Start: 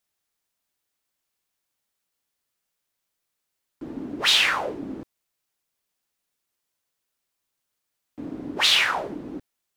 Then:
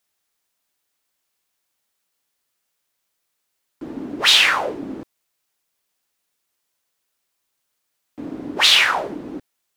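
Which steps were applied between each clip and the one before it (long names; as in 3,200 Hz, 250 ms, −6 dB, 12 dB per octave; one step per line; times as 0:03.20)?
low-shelf EQ 230 Hz −5.5 dB
level +5.5 dB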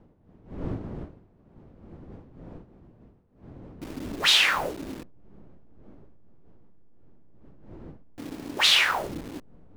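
hold until the input has moved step −31 dBFS
wind on the microphone 270 Hz −38 dBFS
level −6 dB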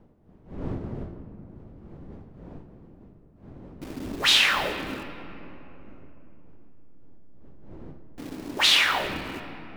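convolution reverb RT60 3.3 s, pre-delay 5 ms, DRR 7 dB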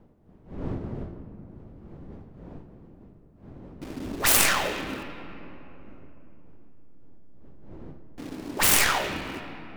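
stylus tracing distortion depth 0.5 ms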